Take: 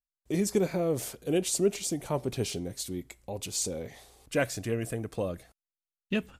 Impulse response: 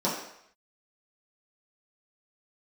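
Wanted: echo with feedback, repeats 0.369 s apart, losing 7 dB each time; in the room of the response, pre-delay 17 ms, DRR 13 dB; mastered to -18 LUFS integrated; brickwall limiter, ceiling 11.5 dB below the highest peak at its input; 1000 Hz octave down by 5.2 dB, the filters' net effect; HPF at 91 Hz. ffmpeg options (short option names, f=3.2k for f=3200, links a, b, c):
-filter_complex "[0:a]highpass=91,equalizer=f=1k:t=o:g=-8,alimiter=level_in=2.5dB:limit=-24dB:level=0:latency=1,volume=-2.5dB,aecho=1:1:369|738|1107|1476|1845:0.447|0.201|0.0905|0.0407|0.0183,asplit=2[a][b];[1:a]atrim=start_sample=2205,adelay=17[c];[b][c]afir=irnorm=-1:irlink=0,volume=-24.5dB[d];[a][d]amix=inputs=2:normalize=0,volume=18dB"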